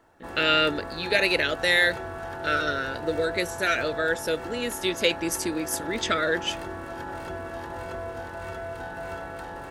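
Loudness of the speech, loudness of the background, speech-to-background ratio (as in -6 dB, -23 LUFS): -25.0 LUFS, -36.0 LUFS, 11.0 dB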